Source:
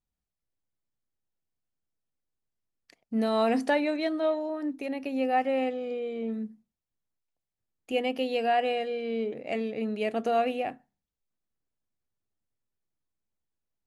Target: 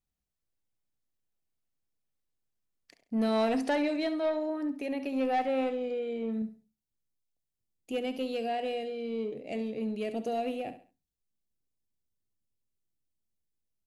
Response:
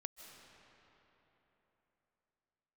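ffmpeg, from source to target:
-af "asetnsamples=nb_out_samples=441:pad=0,asendcmd='6.42 equalizer g -14.5',equalizer=frequency=1300:width=0.79:gain=-2,asoftclip=type=tanh:threshold=-22.5dB,aecho=1:1:68|136|204:0.251|0.0829|0.0274"

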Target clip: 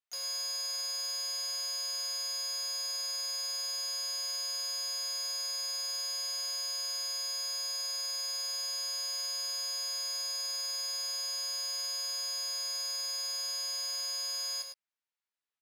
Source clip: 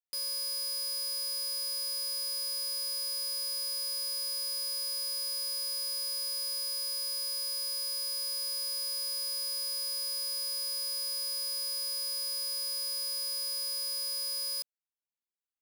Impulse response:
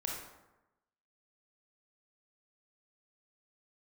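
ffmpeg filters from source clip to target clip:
-filter_complex "[0:a]bandpass=frequency=1700:width_type=q:width=0.53:csg=0,asplit=2[link_01][link_02];[link_02]asetrate=58866,aresample=44100,atempo=0.749154,volume=-8dB[link_03];[link_01][link_03]amix=inputs=2:normalize=0,asplit=2[link_04][link_05];[link_05]adelay=15,volume=-8dB[link_06];[link_04][link_06]amix=inputs=2:normalize=0,asplit=2[link_07][link_08];[link_08]aecho=0:1:103:0.501[link_09];[link_07][link_09]amix=inputs=2:normalize=0,volume=3dB"

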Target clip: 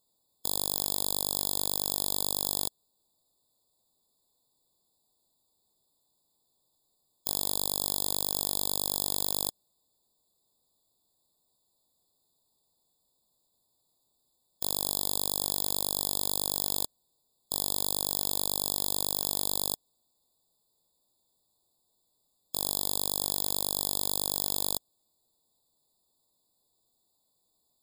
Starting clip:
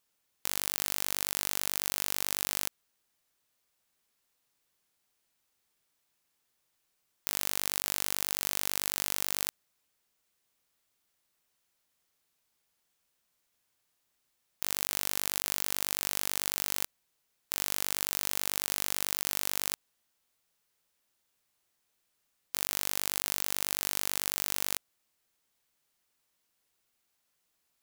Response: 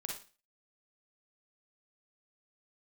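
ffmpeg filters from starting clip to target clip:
-af "asuperstop=centerf=1500:order=4:qfactor=1.1,afftfilt=real='re*eq(mod(floor(b*sr/1024/1700),2),0)':imag='im*eq(mod(floor(b*sr/1024/1700),2),0)':win_size=1024:overlap=0.75,volume=5.5dB"

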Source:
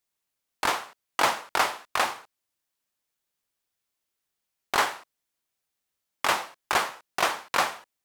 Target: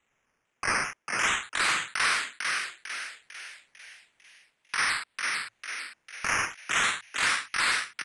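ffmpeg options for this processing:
ffmpeg -i in.wav -filter_complex "[0:a]highpass=650,equalizer=frequency=1800:width_type=o:width=1.9:gain=15,areverse,acompressor=threshold=-26dB:ratio=6,areverse,afreqshift=260,acrusher=samples=9:mix=1:aa=0.000001:lfo=1:lforange=5.4:lforate=0.37,asoftclip=type=tanh:threshold=-22.5dB,aresample=22050,aresample=44100,asplit=7[link_01][link_02][link_03][link_04][link_05][link_06][link_07];[link_02]adelay=449,afreqshift=110,volume=-3.5dB[link_08];[link_03]adelay=898,afreqshift=220,volume=-9.9dB[link_09];[link_04]adelay=1347,afreqshift=330,volume=-16.3dB[link_10];[link_05]adelay=1796,afreqshift=440,volume=-22.6dB[link_11];[link_06]adelay=2245,afreqshift=550,volume=-29dB[link_12];[link_07]adelay=2694,afreqshift=660,volume=-35.4dB[link_13];[link_01][link_08][link_09][link_10][link_11][link_12][link_13]amix=inputs=7:normalize=0,volume=3dB" out.wav

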